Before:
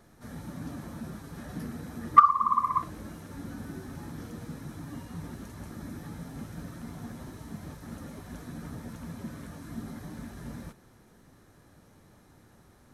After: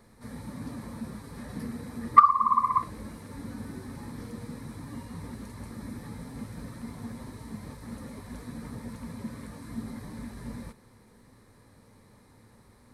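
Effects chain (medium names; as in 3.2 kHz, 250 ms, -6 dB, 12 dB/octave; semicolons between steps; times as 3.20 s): rippled EQ curve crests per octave 0.94, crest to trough 7 dB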